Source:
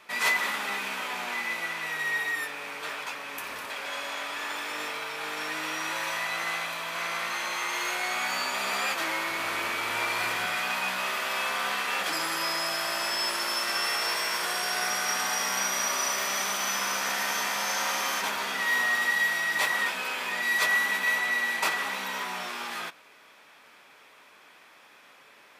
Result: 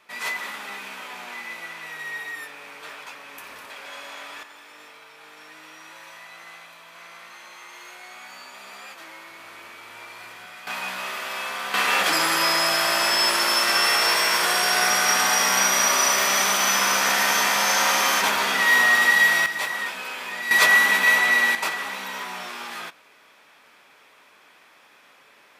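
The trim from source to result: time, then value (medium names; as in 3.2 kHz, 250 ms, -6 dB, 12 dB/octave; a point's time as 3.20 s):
-4 dB
from 4.43 s -12.5 dB
from 10.67 s -1 dB
from 11.74 s +8.5 dB
from 19.46 s -1 dB
from 20.51 s +8.5 dB
from 21.55 s +0.5 dB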